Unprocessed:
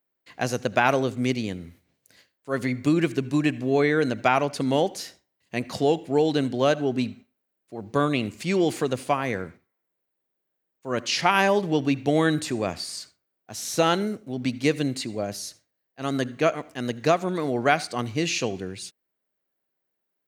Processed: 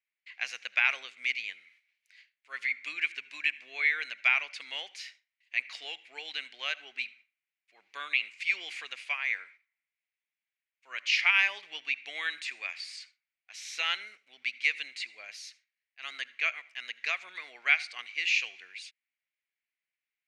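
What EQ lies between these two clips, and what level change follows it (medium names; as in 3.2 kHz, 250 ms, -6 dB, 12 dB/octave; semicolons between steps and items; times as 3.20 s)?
ladder band-pass 2.5 kHz, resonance 65%; +8.0 dB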